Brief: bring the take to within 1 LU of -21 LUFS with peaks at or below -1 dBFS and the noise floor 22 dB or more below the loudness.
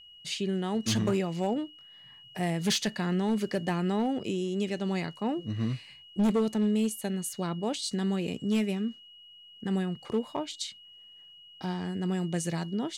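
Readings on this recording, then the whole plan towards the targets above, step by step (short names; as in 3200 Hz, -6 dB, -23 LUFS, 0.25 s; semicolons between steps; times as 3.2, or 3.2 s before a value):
clipped 0.8%; flat tops at -21.0 dBFS; steady tone 2900 Hz; tone level -50 dBFS; loudness -30.5 LUFS; peak -21.0 dBFS; loudness target -21.0 LUFS
-> clip repair -21 dBFS; notch 2900 Hz, Q 30; gain +9.5 dB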